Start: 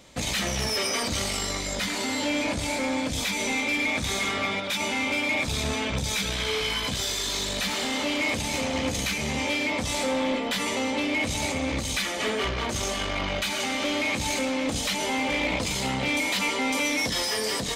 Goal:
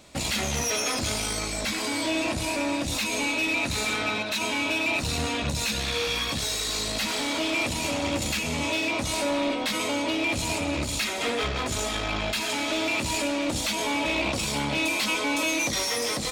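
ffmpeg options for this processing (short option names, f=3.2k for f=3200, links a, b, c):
-af "asetrate=48000,aresample=44100"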